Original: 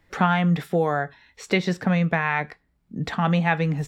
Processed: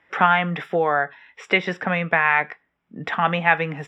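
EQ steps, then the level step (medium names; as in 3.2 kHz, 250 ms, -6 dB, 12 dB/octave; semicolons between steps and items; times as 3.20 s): Savitzky-Golay filter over 25 samples; high-pass 930 Hz 6 dB/octave; +8.0 dB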